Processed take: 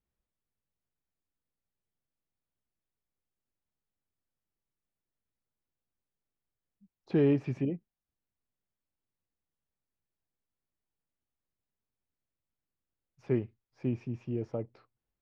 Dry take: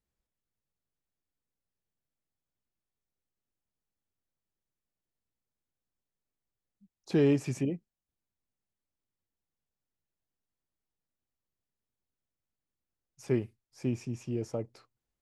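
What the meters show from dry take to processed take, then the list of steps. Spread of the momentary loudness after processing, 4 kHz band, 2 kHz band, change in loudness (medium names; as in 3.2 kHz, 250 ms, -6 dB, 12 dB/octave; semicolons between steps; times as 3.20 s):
14 LU, no reading, -3.5 dB, -0.5 dB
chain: distance through air 310 m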